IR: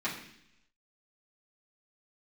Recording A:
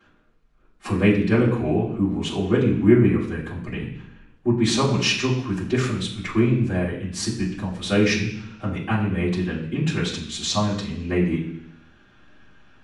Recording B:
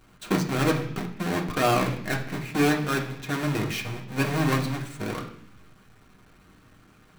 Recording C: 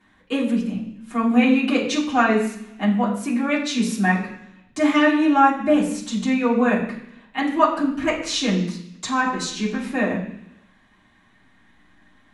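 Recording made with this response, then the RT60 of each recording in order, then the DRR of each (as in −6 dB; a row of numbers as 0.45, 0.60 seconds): C; 0.70 s, non-exponential decay, 0.70 s; −14.0, 0.0, −9.0 decibels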